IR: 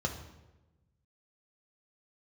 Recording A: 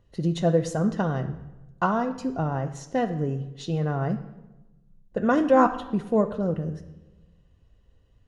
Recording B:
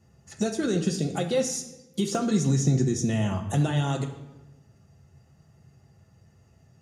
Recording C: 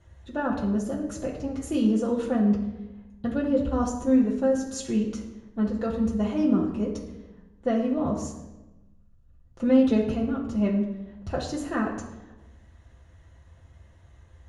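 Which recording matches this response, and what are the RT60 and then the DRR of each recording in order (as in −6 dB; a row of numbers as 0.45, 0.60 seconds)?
B; 1.1, 1.1, 1.1 seconds; 6.0, 2.0, −3.5 decibels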